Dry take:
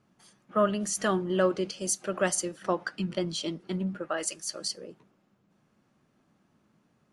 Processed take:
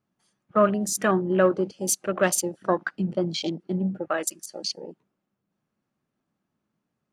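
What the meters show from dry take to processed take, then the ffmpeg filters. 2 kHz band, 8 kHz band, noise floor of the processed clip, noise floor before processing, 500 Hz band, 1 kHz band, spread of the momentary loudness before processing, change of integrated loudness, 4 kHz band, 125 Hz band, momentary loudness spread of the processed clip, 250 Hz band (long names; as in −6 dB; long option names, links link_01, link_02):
+4.5 dB, +3.5 dB, −82 dBFS, −70 dBFS, +5.0 dB, +5.0 dB, 7 LU, +4.5 dB, +2.0 dB, +5.0 dB, 10 LU, +5.0 dB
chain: -af "afwtdn=0.0126,volume=5dB"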